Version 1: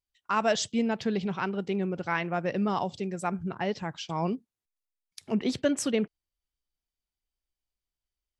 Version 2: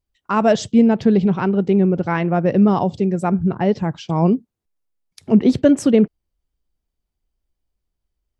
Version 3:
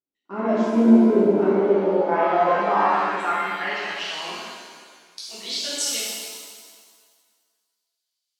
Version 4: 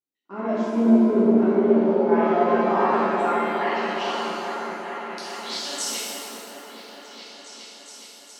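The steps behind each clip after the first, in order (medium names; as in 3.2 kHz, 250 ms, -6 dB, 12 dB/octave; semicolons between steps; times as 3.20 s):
tilt shelf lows +7.5 dB, about 840 Hz; trim +8.5 dB
band-pass sweep 290 Hz -> 4.2 kHz, 0.90–4.82 s; RIAA curve recording; pitch-shifted reverb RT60 1.7 s, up +7 st, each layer -8 dB, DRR -9.5 dB; trim -1.5 dB
delay with an opening low-pass 415 ms, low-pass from 750 Hz, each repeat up 1 oct, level -3 dB; trim -3.5 dB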